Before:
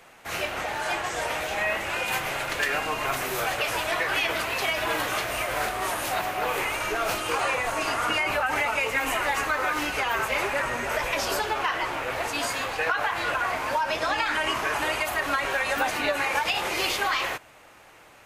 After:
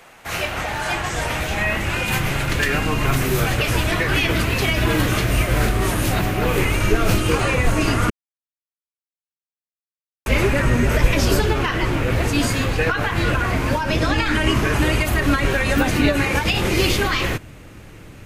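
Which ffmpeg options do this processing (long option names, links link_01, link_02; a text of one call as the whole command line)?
ffmpeg -i in.wav -filter_complex "[0:a]asplit=3[link_01][link_02][link_03];[link_01]atrim=end=8.1,asetpts=PTS-STARTPTS,afade=type=out:start_time=8.096:duration=0.004:curve=hsin[link_04];[link_02]atrim=start=8.1:end=10.26,asetpts=PTS-STARTPTS,volume=0[link_05];[link_03]atrim=start=10.26,asetpts=PTS-STARTPTS,afade=type=in:duration=0.004:curve=hsin[link_06];[link_04][link_05][link_06]concat=n=3:v=0:a=1,asubboost=boost=11.5:cutoff=230,volume=5.5dB" out.wav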